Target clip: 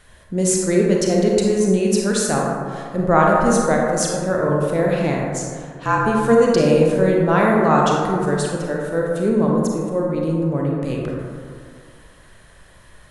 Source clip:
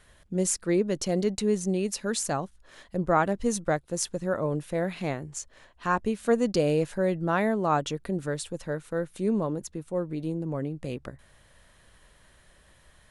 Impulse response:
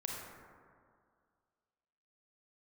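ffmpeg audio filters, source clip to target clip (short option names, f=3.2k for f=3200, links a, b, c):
-filter_complex "[0:a]asettb=1/sr,asplit=3[a][b][c];[a]atrim=end=5.404[d];[b]atrim=start=5.4:end=5.99,asetpts=PTS-STARTPTS,afade=t=in:d=0.004:c=qsin,afade=t=out:st=0.586:d=0.004:c=qsin,afreqshift=-43[e];[c]atrim=start=5.986[f];[d][e]acrossfade=d=0.004:c1=hsin:c2=qsin[g];[g][f]acrossfade=d=0.004:c1=qsin:c2=hsin[h];[1:a]atrim=start_sample=2205[i];[h][i]afir=irnorm=-1:irlink=0,volume=9dB"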